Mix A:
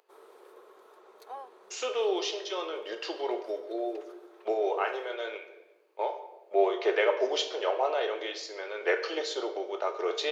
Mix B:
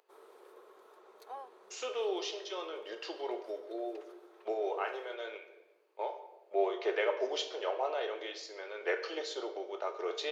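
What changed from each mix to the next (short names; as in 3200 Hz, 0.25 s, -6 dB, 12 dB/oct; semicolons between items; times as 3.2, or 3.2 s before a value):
speech -6.0 dB; background -3.0 dB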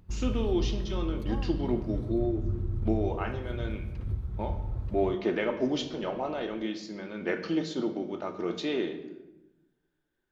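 speech: entry -1.60 s; master: remove Chebyshev high-pass 410 Hz, order 5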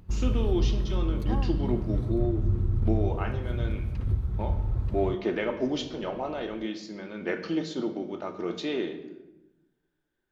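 background +5.5 dB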